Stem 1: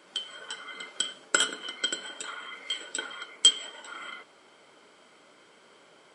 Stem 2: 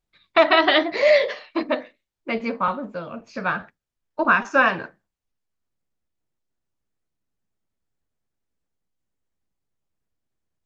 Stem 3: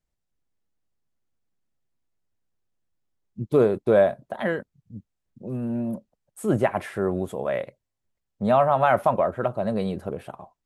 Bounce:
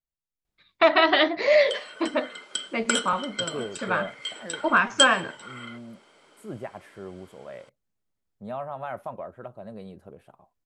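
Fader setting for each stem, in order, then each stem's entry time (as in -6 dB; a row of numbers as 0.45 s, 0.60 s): -1.0 dB, -2.5 dB, -15.0 dB; 1.55 s, 0.45 s, 0.00 s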